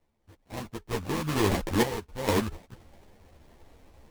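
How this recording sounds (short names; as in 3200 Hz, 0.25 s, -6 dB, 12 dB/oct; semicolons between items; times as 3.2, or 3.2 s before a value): aliases and images of a low sample rate 1400 Hz, jitter 20%; random-step tremolo 2.2 Hz, depth 90%; a shimmering, thickened sound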